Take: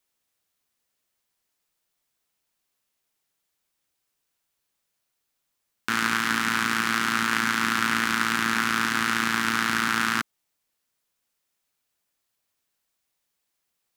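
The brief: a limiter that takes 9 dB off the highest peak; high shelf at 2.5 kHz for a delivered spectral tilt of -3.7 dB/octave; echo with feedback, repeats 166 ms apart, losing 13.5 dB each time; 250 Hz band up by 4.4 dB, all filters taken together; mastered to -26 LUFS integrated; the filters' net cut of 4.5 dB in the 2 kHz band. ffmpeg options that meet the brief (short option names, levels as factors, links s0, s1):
-af "equalizer=f=250:t=o:g=5,equalizer=f=2000:t=o:g=-3,highshelf=f=2500:g=-7.5,alimiter=limit=0.126:level=0:latency=1,aecho=1:1:166|332:0.211|0.0444,volume=1.88"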